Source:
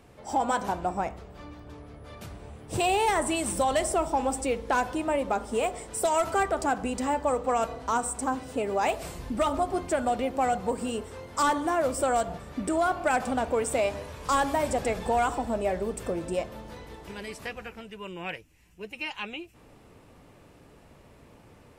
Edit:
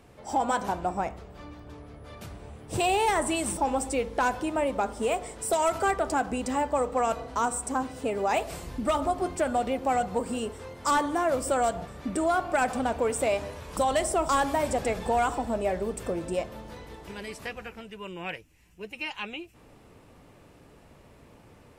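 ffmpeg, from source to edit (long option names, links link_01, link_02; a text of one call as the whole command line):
ffmpeg -i in.wav -filter_complex "[0:a]asplit=4[link_01][link_02][link_03][link_04];[link_01]atrim=end=3.572[link_05];[link_02]atrim=start=4.088:end=14.292[link_06];[link_03]atrim=start=3.568:end=4.092[link_07];[link_04]atrim=start=14.288[link_08];[link_05][link_06]acrossfade=duration=0.004:curve1=hsin:curve2=hsin[link_09];[link_09][link_07]acrossfade=duration=0.004:curve1=hsin:curve2=hsin[link_10];[link_10][link_08]acrossfade=duration=0.004:curve1=hsin:curve2=hsin" out.wav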